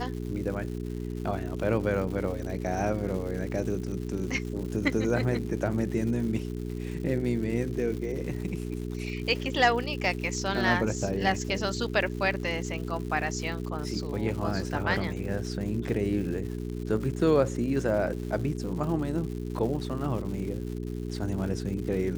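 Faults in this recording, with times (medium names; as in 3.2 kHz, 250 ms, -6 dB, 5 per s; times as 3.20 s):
crackle 240 per s -37 dBFS
hum 60 Hz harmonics 7 -34 dBFS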